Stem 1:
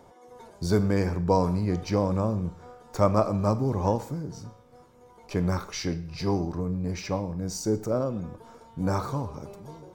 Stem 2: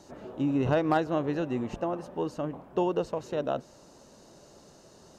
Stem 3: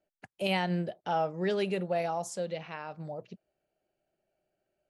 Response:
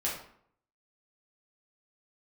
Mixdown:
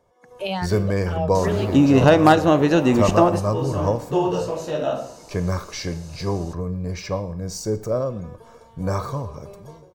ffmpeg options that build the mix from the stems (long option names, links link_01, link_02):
-filter_complex "[0:a]aecho=1:1:1.8:0.43,volume=-11.5dB[link_01];[1:a]highshelf=frequency=4500:gain=12,adelay=1350,volume=1.5dB,asplit=2[link_02][link_03];[link_03]volume=-15.5dB[link_04];[2:a]highshelf=frequency=4800:gain=-4.5,asplit=2[link_05][link_06];[link_06]afreqshift=2.6[link_07];[link_05][link_07]amix=inputs=2:normalize=1,volume=-8.5dB,asplit=2[link_08][link_09];[link_09]apad=whole_len=288064[link_10];[link_02][link_10]sidechaingate=range=-33dB:threshold=-58dB:ratio=16:detection=peak[link_11];[3:a]atrim=start_sample=2205[link_12];[link_04][link_12]afir=irnorm=-1:irlink=0[link_13];[link_01][link_11][link_08][link_13]amix=inputs=4:normalize=0,dynaudnorm=framelen=110:gausssize=5:maxgain=13.5dB"